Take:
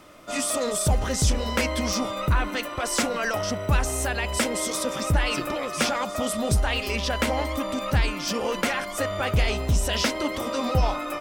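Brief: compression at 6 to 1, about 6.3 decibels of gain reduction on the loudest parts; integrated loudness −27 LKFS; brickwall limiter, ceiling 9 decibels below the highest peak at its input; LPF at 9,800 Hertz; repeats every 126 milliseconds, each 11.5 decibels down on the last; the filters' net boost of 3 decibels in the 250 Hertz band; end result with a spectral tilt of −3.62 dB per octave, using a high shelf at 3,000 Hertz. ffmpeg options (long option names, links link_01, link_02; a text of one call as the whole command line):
ffmpeg -i in.wav -af "lowpass=9800,equalizer=frequency=250:width_type=o:gain=3.5,highshelf=frequency=3000:gain=3,acompressor=threshold=-23dB:ratio=6,alimiter=limit=-22dB:level=0:latency=1,aecho=1:1:126|252|378:0.266|0.0718|0.0194,volume=3.5dB" out.wav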